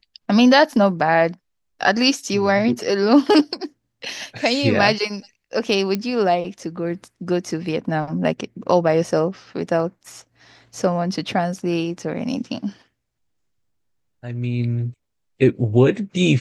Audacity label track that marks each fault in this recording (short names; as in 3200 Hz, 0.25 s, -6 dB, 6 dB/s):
5.950000	5.950000	pop -10 dBFS